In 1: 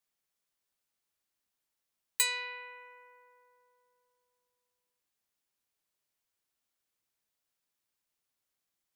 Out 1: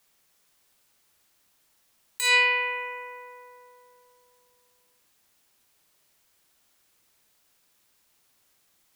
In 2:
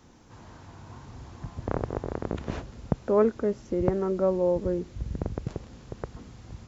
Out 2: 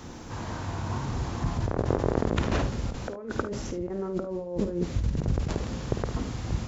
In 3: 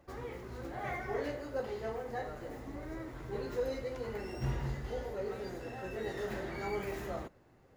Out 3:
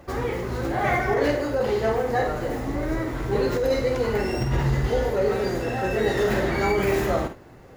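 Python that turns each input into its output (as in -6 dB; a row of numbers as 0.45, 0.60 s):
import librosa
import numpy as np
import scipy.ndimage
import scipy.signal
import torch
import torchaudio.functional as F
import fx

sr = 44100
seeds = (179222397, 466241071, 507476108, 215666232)

p1 = fx.over_compress(x, sr, threshold_db=-36.0, ratio=-1.0)
p2 = p1 + fx.room_early_taps(p1, sr, ms=(51, 74), db=(-9.5, -16.0), dry=0)
y = p2 * 10.0 ** (-9 / 20.0) / np.max(np.abs(p2))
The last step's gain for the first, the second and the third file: +14.5, +6.5, +15.0 dB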